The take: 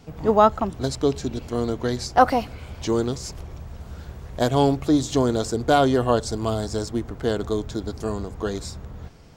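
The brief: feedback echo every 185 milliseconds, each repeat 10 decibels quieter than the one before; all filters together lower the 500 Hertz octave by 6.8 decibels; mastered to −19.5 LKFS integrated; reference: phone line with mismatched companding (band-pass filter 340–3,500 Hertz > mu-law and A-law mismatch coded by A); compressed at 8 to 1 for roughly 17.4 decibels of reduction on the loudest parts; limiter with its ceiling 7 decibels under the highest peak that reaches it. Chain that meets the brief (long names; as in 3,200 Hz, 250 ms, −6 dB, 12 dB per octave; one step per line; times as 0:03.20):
parametric band 500 Hz −7.5 dB
downward compressor 8 to 1, threshold −31 dBFS
brickwall limiter −26.5 dBFS
band-pass filter 340–3,500 Hz
repeating echo 185 ms, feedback 32%, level −10 dB
mu-law and A-law mismatch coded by A
level +25 dB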